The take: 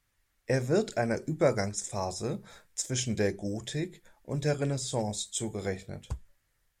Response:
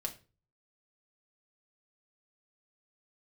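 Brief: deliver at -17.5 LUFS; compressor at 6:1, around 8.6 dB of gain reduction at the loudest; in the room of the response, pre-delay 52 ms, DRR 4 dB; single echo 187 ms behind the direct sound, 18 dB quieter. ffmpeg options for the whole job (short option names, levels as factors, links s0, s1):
-filter_complex "[0:a]acompressor=threshold=0.0398:ratio=6,aecho=1:1:187:0.126,asplit=2[s0][s1];[1:a]atrim=start_sample=2205,adelay=52[s2];[s1][s2]afir=irnorm=-1:irlink=0,volume=0.631[s3];[s0][s3]amix=inputs=2:normalize=0,volume=6.31"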